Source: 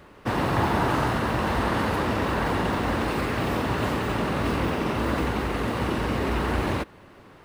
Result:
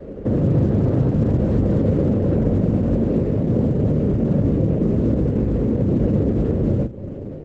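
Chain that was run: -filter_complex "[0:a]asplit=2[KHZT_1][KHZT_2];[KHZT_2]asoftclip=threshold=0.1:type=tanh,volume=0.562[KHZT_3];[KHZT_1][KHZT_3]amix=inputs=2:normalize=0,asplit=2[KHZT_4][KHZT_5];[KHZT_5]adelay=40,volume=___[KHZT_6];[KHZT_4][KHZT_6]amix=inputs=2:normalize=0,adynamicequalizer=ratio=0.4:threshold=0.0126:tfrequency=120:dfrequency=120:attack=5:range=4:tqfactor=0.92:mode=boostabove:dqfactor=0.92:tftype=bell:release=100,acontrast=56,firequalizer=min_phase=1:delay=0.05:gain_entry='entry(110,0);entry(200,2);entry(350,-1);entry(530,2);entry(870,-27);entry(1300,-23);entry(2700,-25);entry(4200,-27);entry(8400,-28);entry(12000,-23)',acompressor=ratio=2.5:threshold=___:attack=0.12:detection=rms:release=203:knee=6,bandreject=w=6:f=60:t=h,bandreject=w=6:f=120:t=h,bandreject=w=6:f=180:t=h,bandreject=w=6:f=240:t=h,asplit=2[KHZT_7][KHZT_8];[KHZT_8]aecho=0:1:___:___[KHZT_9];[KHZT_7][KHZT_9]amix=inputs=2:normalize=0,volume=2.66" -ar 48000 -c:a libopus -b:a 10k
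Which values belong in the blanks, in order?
0.501, 0.0447, 144, 0.1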